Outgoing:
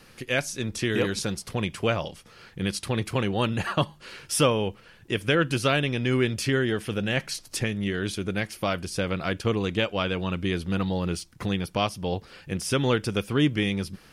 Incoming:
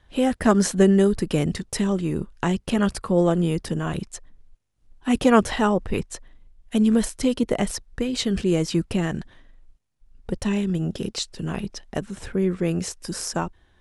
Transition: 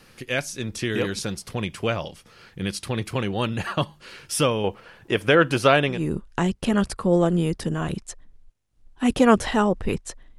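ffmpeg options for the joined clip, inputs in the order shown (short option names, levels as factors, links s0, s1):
-filter_complex "[0:a]asettb=1/sr,asplit=3[s0][s1][s2];[s0]atrim=end=4.644[s3];[s1]atrim=start=4.64:end=6.03,asetpts=PTS-STARTPTS,afade=t=in:d=0.004:c=qsin,afade=t=out:st=1.386:d=0.004:c=qsin,equalizer=f=800:t=o:w=2.4:g=9.5[s4];[s2]atrim=start=6.026[s5];[s3][s4]acrossfade=d=0.004:c1=hsin:c2=qsin[s6];[s6][s5]acrossfade=d=0.004:c1=qsin:c2=hsin,apad=whole_dur=10.38,atrim=end=10.38,atrim=end=6.03,asetpts=PTS-STARTPTS[s7];[1:a]atrim=start=1.92:end=6.43,asetpts=PTS-STARTPTS[s8];[s7][s8]acrossfade=d=0.16:c1=tri:c2=tri"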